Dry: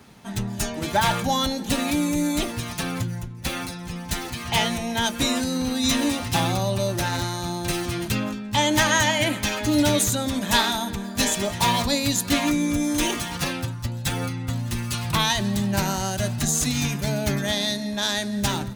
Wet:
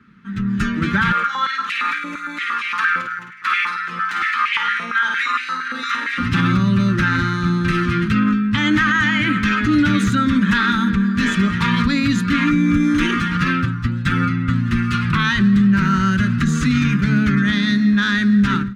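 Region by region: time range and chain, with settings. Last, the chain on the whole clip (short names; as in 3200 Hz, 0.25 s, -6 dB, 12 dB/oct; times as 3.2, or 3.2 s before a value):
1.12–6.18 flutter echo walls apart 8.8 m, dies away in 0.48 s + compressor 10:1, threshold -24 dBFS + stepped high-pass 8.7 Hz 630–2300 Hz
whole clip: EQ curve 130 Hz 0 dB, 190 Hz +10 dB, 490 Hz -9 dB, 710 Hz -28 dB, 1300 Hz +11 dB, 13000 Hz -28 dB; limiter -15 dBFS; AGC gain up to 14.5 dB; gain -5.5 dB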